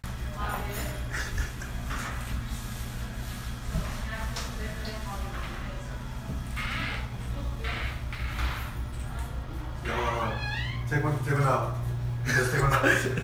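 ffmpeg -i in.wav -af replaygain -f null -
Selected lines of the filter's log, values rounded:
track_gain = +11.0 dB
track_peak = 0.260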